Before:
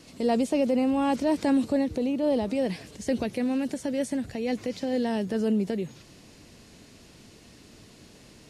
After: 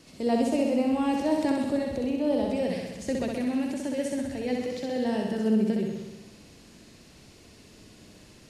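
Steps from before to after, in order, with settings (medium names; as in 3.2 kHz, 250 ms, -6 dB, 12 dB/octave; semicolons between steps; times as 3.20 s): flutter echo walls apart 11 m, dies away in 1.1 s; trim -3 dB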